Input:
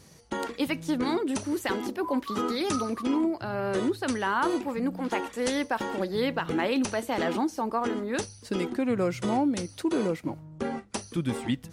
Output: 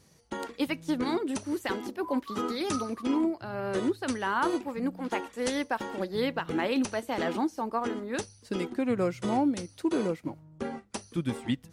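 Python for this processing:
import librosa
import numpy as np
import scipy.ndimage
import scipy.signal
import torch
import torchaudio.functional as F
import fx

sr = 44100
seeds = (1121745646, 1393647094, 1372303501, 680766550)

y = fx.upward_expand(x, sr, threshold_db=-37.0, expansion=1.5)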